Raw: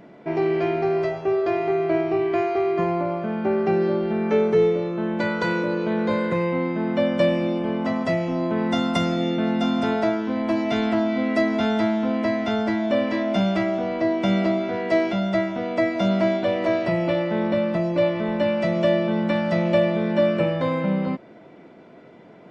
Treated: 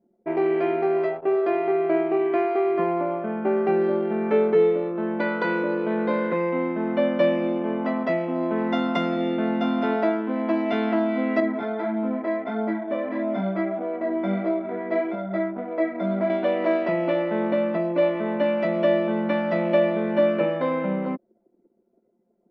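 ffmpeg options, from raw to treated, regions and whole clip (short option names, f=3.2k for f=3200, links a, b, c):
-filter_complex "[0:a]asettb=1/sr,asplit=3[a][b][c];[a]atrim=end=11.404[d];[b]atrim=start=11.4:end=16.3,asetpts=PTS-STARTPTS,afade=t=in:d=0.004:c=qsin,afade=t=out:st=4.896:d=0.004:c=qsin,asuperstop=centerf=2800:order=4:qfactor=7.7,highshelf=f=3.9k:g=-9.5,flanger=delay=18.5:depth=2.9:speed=1.6[e];[c]atrim=start=16.296[f];[d][e]acrossfade=d=0.004:c1=hsin:c2=qsin[g];[g][f]acrossfade=d=0.004:c1=qsin:c2=hsin,highpass=f=210:w=0.5412,highpass=f=210:w=1.3066,anlmdn=10,lowpass=2.7k"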